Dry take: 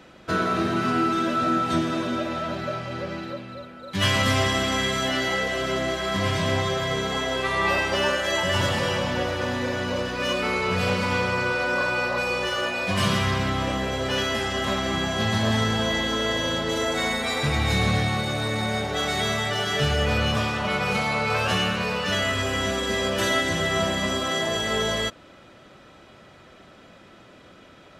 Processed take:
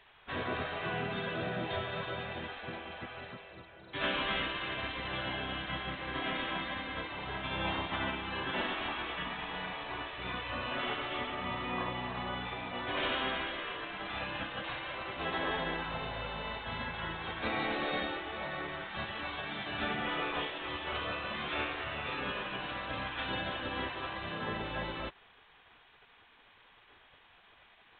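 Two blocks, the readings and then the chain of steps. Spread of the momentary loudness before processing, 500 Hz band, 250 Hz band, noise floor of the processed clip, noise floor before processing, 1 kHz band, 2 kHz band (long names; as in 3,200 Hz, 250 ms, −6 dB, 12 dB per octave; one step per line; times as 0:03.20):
4 LU, −14.0 dB, −14.5 dB, −61 dBFS, −50 dBFS, −10.5 dB, −10.5 dB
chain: gate on every frequency bin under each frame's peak −10 dB weak
level −5 dB
A-law companding 64 kbit/s 8,000 Hz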